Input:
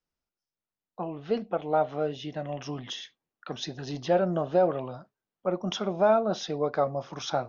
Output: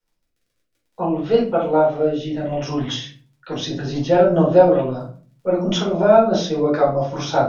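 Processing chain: crackle 33/s -56 dBFS; rotary speaker horn 0.6 Hz, later 5 Hz, at 2.71; shoebox room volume 280 m³, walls furnished, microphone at 4.5 m; gain +4 dB

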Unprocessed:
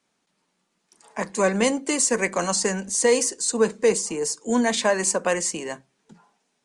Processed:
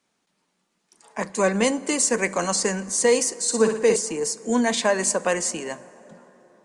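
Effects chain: 3.4–3.96 flutter echo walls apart 10.1 m, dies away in 0.53 s; plate-style reverb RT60 4.5 s, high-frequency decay 0.4×, DRR 18 dB

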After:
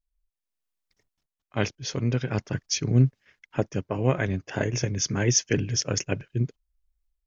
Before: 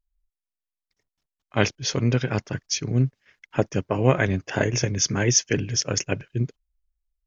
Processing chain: low shelf 410 Hz +3 dB; AGC gain up to 11.5 dB; gain -7 dB

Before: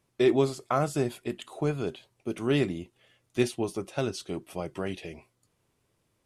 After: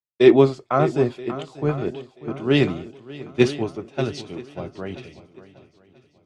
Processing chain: air absorption 130 m; swung echo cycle 0.983 s, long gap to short 1.5:1, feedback 51%, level -10 dB; three-band expander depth 100%; gain +5 dB

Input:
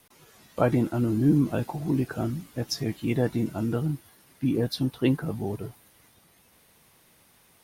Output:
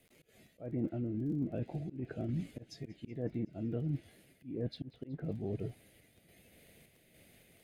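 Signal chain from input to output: notch 5600 Hz, Q 6.2; treble ducked by the level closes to 1500 Hz, closed at -19.5 dBFS; EQ curve 660 Hz 0 dB, 1000 Hz -22 dB, 2100 Hz 0 dB, 4300 Hz -7 dB; in parallel at +1 dB: limiter -18 dBFS, peak gain reduction 7 dB; on the sum: random-step tremolo 3.5 Hz; reverse; compressor 6:1, threshold -29 dBFS, peak gain reduction 14 dB; reverse; crackle 20/s -48 dBFS; auto swell 0.199 s; thin delay 0.187 s, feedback 68%, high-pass 1900 Hz, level -22.5 dB; gain -4 dB

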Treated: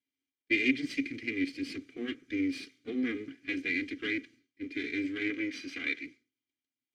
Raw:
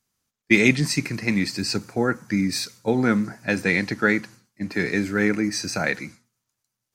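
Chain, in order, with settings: minimum comb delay 2.5 ms; in parallel at -1 dB: limiter -13.5 dBFS, peak gain reduction 8 dB; 5.3–6.05 on the sum: overdrive pedal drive 8 dB, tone 3900 Hz, clips at -5 dBFS; vowel filter i; gain -1.5 dB

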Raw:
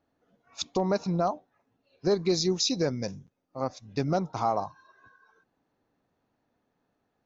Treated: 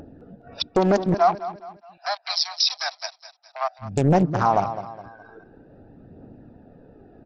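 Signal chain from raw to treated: Wiener smoothing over 41 samples; 1.14–3.79 steep high-pass 660 Hz 96 dB/oct; upward compressor, threshold -42 dBFS; phaser 0.48 Hz, delay 3.4 ms, feedback 36%; hard clip -15 dBFS, distortion -27 dB; brick-wall FIR low-pass 5800 Hz; feedback echo 0.208 s, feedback 38%, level -14.5 dB; maximiser +19 dB; Doppler distortion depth 0.77 ms; gain -8 dB

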